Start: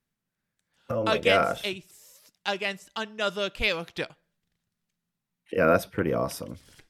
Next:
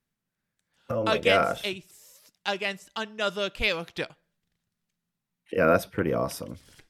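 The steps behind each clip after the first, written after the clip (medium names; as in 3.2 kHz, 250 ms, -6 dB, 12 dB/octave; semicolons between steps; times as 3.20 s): no audible change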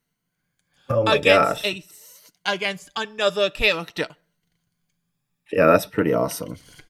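drifting ripple filter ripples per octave 1.9, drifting +0.47 Hz, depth 9 dB; comb 6.8 ms, depth 32%; trim +5 dB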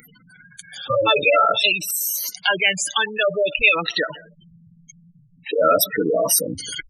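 spectral gate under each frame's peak -10 dB strong; tilt EQ +4.5 dB/octave; level flattener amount 50%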